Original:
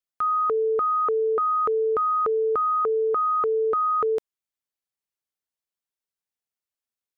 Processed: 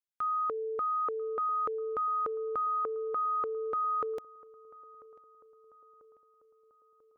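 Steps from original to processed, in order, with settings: dynamic EQ 410 Hz, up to -6 dB, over -37 dBFS, Q 4.1; darkening echo 0.992 s, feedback 58%, low-pass 1500 Hz, level -21.5 dB; gain -8 dB

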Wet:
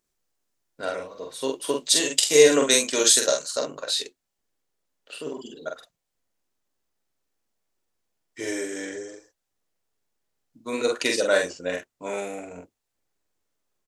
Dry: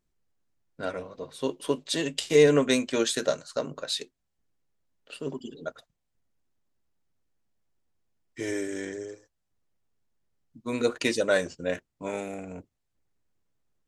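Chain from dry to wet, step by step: tone controls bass -11 dB, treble +6 dB, from 1.84 s treble +13 dB, from 3.6 s treble +3 dB; doubler 45 ms -3.5 dB; gain +2 dB

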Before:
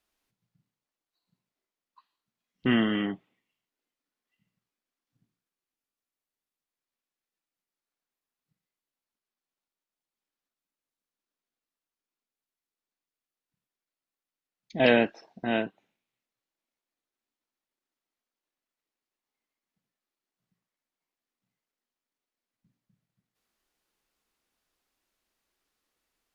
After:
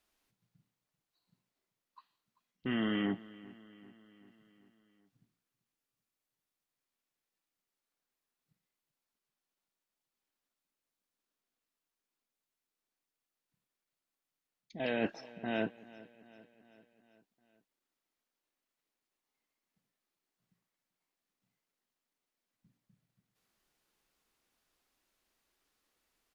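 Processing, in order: reverse; compressor 20:1, threshold -30 dBFS, peak gain reduction 16 dB; reverse; feedback echo 0.389 s, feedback 58%, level -20 dB; gain +1 dB

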